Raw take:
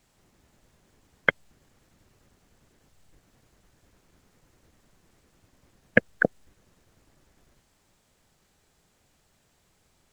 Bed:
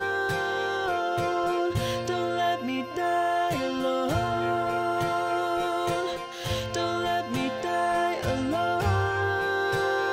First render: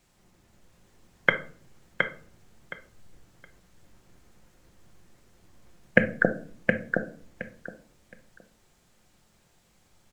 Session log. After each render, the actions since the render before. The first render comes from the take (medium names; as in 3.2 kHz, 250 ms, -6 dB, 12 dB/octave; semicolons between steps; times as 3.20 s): on a send: feedback delay 718 ms, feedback 20%, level -4.5 dB; on the sum: simulated room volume 400 m³, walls furnished, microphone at 0.9 m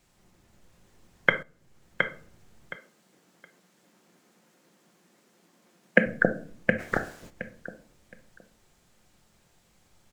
1.43–2.02 s: fade in, from -13.5 dB; 2.77–6.06 s: steep high-pass 170 Hz; 6.78–7.29 s: spectral peaks clipped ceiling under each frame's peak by 24 dB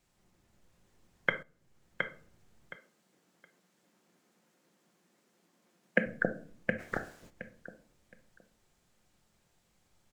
trim -8 dB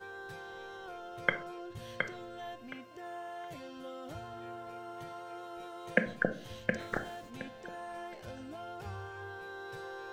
add bed -18.5 dB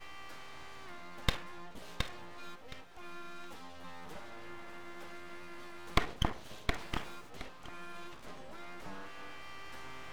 full-wave rectifier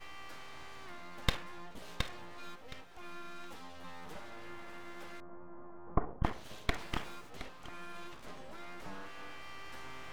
5.20–6.24 s: low-pass 1.1 kHz 24 dB/octave